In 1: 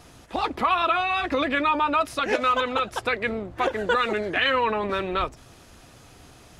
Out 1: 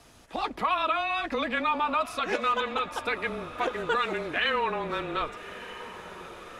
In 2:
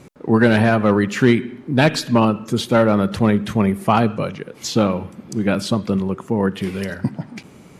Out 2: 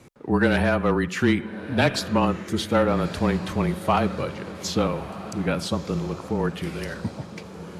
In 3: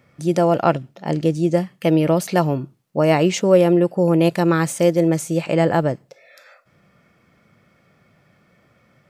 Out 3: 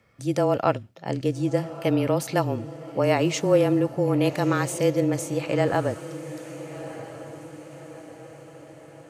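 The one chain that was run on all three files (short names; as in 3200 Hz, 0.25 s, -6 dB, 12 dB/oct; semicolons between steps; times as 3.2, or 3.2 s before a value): frequency shift -24 Hz; low shelf 350 Hz -4 dB; diffused feedback echo 1.276 s, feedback 52%, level -14 dB; gain -4 dB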